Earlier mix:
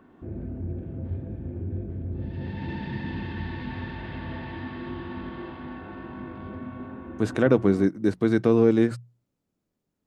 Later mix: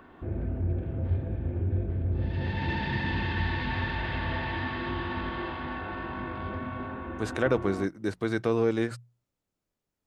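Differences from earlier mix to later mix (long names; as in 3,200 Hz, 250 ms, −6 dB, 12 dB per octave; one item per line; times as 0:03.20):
background +8.5 dB
master: add parametric band 220 Hz −10 dB 2.2 octaves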